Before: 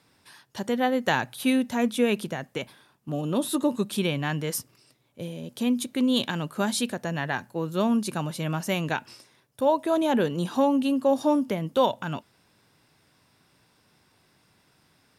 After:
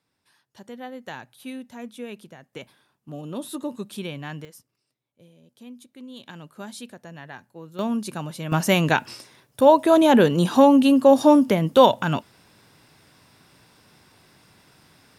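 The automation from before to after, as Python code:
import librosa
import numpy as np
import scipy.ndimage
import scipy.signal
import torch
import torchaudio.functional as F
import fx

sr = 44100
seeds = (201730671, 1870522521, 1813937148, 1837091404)

y = fx.gain(x, sr, db=fx.steps((0.0, -13.0), (2.53, -6.5), (4.45, -18.0), (6.26, -11.5), (7.79, -2.0), (8.52, 8.0)))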